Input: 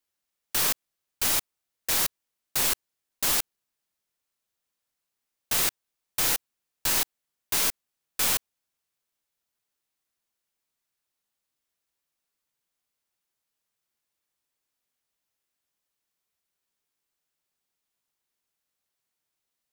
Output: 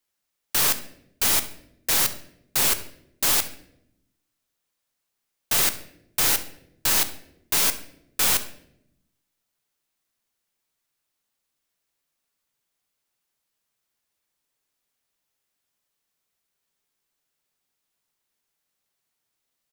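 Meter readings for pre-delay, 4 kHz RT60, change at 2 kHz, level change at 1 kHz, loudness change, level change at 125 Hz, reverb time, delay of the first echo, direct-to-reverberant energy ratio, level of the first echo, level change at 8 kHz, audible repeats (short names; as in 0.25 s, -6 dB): 3 ms, 0.55 s, +4.0 dB, +4.0 dB, +4.0 dB, +4.5 dB, 0.80 s, 68 ms, 9.5 dB, -19.0 dB, +4.0 dB, 1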